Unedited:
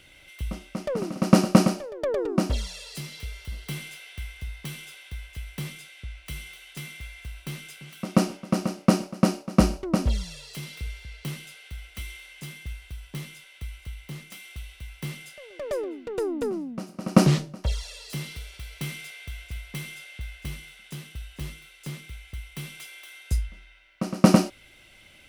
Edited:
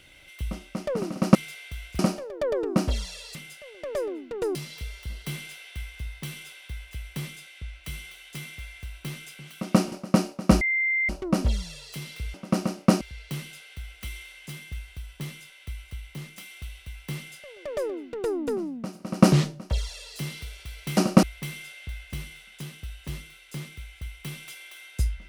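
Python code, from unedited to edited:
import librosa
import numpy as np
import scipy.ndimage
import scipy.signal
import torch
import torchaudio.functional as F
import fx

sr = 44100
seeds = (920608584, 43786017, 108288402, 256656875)

y = fx.edit(x, sr, fx.swap(start_s=1.35, length_s=0.26, other_s=18.91, other_length_s=0.64),
    fx.move(start_s=8.34, length_s=0.67, to_s=10.95),
    fx.insert_tone(at_s=9.7, length_s=0.48, hz=2090.0, db=-21.5),
    fx.duplicate(start_s=15.11, length_s=1.2, to_s=2.97), tone=tone)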